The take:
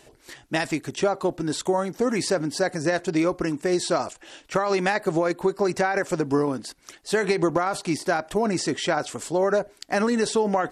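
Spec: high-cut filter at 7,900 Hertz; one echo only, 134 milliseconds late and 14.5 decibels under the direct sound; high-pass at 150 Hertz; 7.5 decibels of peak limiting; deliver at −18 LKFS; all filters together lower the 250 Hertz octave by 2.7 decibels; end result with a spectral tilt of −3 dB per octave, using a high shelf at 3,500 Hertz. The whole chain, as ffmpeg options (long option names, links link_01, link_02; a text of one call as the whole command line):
ffmpeg -i in.wav -af "highpass=150,lowpass=7900,equalizer=frequency=250:width_type=o:gain=-3.5,highshelf=frequency=3500:gain=9,alimiter=limit=-13.5dB:level=0:latency=1,aecho=1:1:134:0.188,volume=8dB" out.wav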